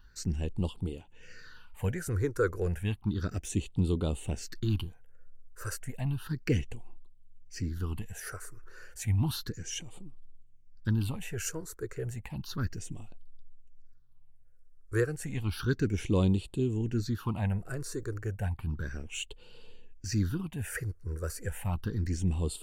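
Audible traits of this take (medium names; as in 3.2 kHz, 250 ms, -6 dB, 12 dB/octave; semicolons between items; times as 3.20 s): phasing stages 6, 0.32 Hz, lowest notch 210–1700 Hz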